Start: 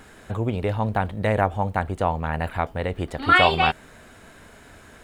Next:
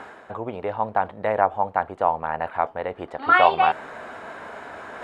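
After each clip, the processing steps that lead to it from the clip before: reverse; upward compressor, threshold -23 dBFS; reverse; band-pass filter 870 Hz, Q 1.2; trim +4 dB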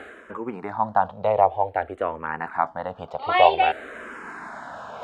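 barber-pole phaser -0.53 Hz; trim +3 dB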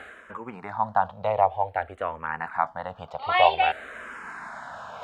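peaking EQ 340 Hz -11 dB 1.3 oct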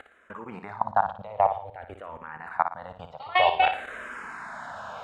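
level held to a coarse grid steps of 21 dB; flutter echo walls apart 9.9 m, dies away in 0.4 s; trim +2.5 dB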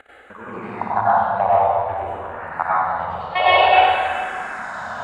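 plate-style reverb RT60 1.8 s, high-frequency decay 0.8×, pre-delay 80 ms, DRR -9 dB

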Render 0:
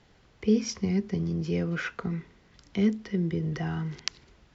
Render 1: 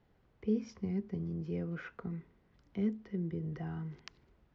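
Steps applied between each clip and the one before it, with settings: low-pass 1.1 kHz 6 dB/octave; trim -8.5 dB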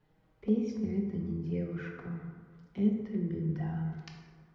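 touch-sensitive flanger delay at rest 6.7 ms, full sweep at -31 dBFS; plate-style reverb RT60 1.7 s, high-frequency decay 0.45×, DRR 0.5 dB; trim +2 dB

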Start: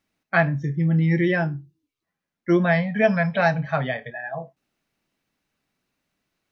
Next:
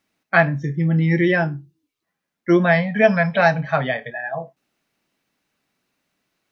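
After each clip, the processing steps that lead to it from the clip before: bass shelf 98 Hz -11 dB; trim +4.5 dB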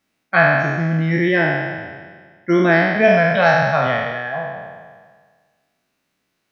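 spectral sustain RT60 1.62 s; trim -1.5 dB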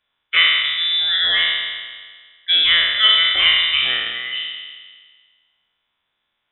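frequency inversion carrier 3.7 kHz; trim -1 dB

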